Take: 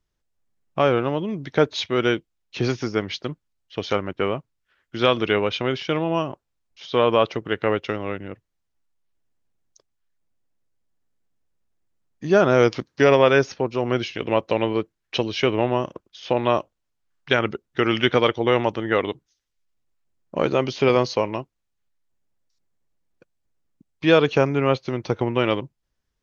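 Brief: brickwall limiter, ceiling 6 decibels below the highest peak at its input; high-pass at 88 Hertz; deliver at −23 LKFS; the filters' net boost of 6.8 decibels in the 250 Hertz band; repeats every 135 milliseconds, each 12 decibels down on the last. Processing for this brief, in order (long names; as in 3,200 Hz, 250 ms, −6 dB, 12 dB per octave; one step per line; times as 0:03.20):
high-pass filter 88 Hz
parametric band 250 Hz +9 dB
brickwall limiter −7 dBFS
repeating echo 135 ms, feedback 25%, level −12 dB
level −2.5 dB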